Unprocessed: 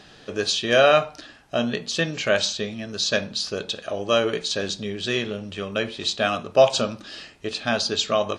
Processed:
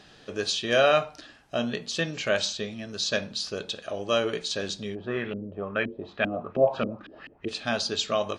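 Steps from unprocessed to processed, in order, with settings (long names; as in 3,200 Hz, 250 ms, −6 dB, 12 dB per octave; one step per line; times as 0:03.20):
0:04.94–0:07.47: auto-filter low-pass saw up 1.3 Hz → 5.9 Hz 260–2,600 Hz
level −4.5 dB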